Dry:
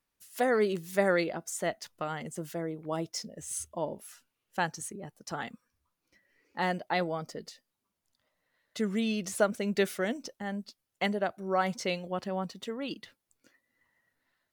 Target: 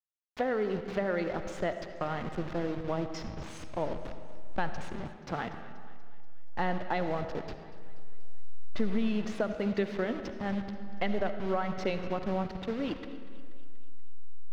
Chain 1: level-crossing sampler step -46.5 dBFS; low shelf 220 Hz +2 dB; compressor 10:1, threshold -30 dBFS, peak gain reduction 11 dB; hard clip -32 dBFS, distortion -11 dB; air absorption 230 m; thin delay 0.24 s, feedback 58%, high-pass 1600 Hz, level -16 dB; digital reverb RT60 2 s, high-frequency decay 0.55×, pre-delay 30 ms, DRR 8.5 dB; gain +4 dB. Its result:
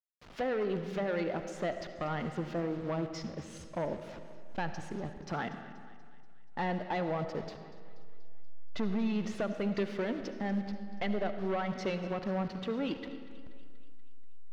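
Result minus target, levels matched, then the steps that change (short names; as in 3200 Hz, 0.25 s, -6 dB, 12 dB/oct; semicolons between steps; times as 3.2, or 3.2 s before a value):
hard clip: distortion +18 dB; level-crossing sampler: distortion -9 dB
change: level-crossing sampler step -37.5 dBFS; change: hard clip -24 dBFS, distortion -29 dB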